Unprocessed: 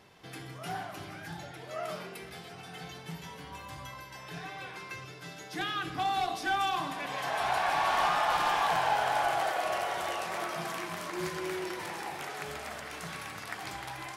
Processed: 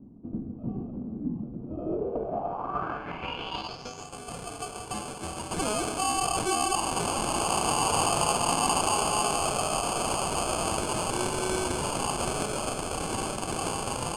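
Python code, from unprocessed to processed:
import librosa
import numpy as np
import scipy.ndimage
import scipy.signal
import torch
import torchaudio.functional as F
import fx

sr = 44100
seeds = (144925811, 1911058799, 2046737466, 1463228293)

p1 = fx.weighting(x, sr, curve='A')
p2 = fx.spec_erase(p1, sr, start_s=3.67, length_s=1.27, low_hz=270.0, high_hz=2300.0)
p3 = fx.high_shelf(p2, sr, hz=9300.0, db=10.0)
p4 = fx.over_compress(p3, sr, threshold_db=-38.0, ratio=-1.0)
p5 = p3 + (p4 * librosa.db_to_amplitude(1.0))
p6 = fx.sample_hold(p5, sr, seeds[0], rate_hz=1900.0, jitter_pct=0)
y = fx.filter_sweep_lowpass(p6, sr, from_hz=230.0, to_hz=8900.0, start_s=1.58, end_s=4.18, q=4.4)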